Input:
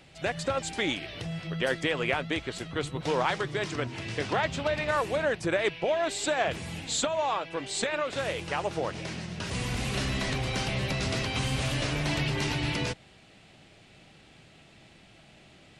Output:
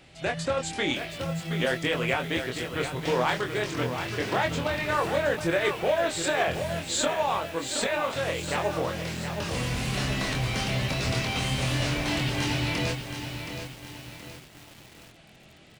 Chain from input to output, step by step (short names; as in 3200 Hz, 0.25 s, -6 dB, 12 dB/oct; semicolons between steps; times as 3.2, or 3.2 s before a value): doubler 24 ms -4 dB; lo-fi delay 0.722 s, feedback 55%, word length 7-bit, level -7.5 dB